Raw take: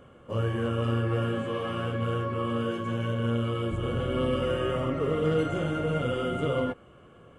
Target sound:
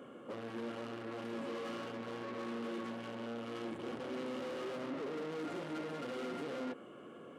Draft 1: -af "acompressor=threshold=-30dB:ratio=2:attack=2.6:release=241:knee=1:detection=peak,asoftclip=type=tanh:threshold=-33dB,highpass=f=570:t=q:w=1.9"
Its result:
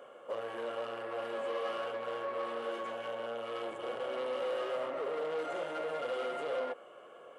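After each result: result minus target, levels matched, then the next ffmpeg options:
250 Hz band -12.5 dB; soft clip: distortion -5 dB
-af "acompressor=threshold=-30dB:ratio=2:attack=2.6:release=241:knee=1:detection=peak,asoftclip=type=tanh:threshold=-33dB,highpass=f=260:t=q:w=1.9"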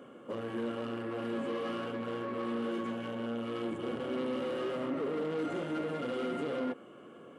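soft clip: distortion -5 dB
-af "acompressor=threshold=-30dB:ratio=2:attack=2.6:release=241:knee=1:detection=peak,asoftclip=type=tanh:threshold=-41.5dB,highpass=f=260:t=q:w=1.9"

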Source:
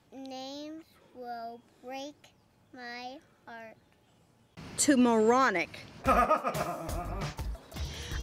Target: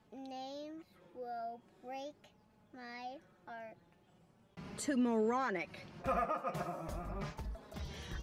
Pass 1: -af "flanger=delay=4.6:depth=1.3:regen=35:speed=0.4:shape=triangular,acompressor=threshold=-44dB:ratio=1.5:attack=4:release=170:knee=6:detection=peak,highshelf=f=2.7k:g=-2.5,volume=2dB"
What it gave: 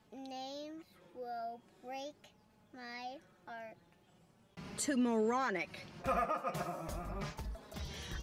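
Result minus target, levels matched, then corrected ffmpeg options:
4000 Hz band +3.5 dB
-af "flanger=delay=4.6:depth=1.3:regen=35:speed=0.4:shape=triangular,acompressor=threshold=-44dB:ratio=1.5:attack=4:release=170:knee=6:detection=peak,highshelf=f=2.7k:g=-8.5,volume=2dB"

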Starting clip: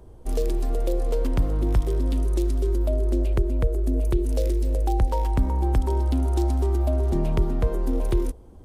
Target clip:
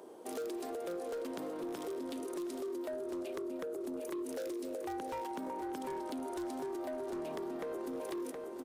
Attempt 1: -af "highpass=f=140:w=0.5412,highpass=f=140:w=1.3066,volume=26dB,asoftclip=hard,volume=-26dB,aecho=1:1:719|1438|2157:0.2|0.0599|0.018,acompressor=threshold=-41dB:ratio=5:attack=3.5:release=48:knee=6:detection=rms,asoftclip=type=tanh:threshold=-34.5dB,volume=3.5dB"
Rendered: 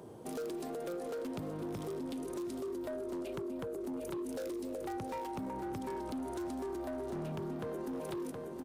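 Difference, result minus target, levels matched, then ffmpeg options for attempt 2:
125 Hz band +13.5 dB
-af "highpass=f=290:w=0.5412,highpass=f=290:w=1.3066,volume=26dB,asoftclip=hard,volume=-26dB,aecho=1:1:719|1438|2157:0.2|0.0599|0.018,acompressor=threshold=-41dB:ratio=5:attack=3.5:release=48:knee=6:detection=rms,asoftclip=type=tanh:threshold=-34.5dB,volume=3.5dB"

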